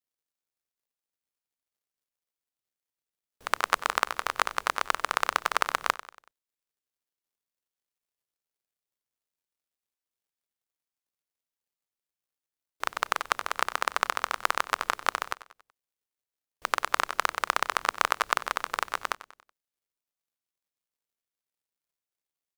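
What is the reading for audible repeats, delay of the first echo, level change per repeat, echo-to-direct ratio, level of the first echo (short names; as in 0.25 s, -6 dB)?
3, 94 ms, -6.5 dB, -15.0 dB, -16.0 dB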